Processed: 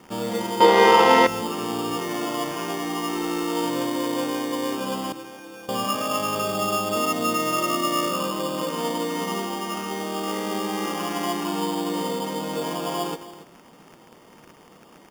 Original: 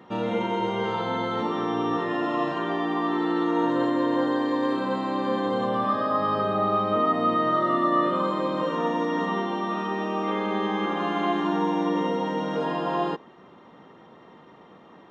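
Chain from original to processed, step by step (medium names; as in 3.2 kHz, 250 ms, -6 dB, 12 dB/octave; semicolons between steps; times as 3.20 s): crackle 350 per s -40 dBFS; 5.12–5.69 s: inharmonic resonator 160 Hz, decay 0.31 s, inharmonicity 0.008; delay 273 ms -15.5 dB; on a send at -17.5 dB: reverberation RT60 1.3 s, pre-delay 3 ms; on the sum: sample-and-hold 11×; 0.60–1.27 s: graphic EQ 125/250/500/1000/2000/4000 Hz -9/+9/+11/+11/+12/+9 dB; trim -1 dB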